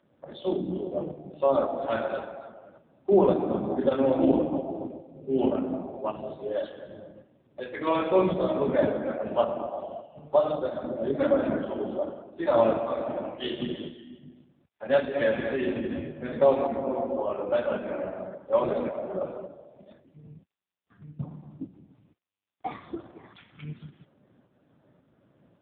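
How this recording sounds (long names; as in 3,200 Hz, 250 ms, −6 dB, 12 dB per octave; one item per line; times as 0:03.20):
tremolo saw up 1.8 Hz, depth 40%
AMR narrowband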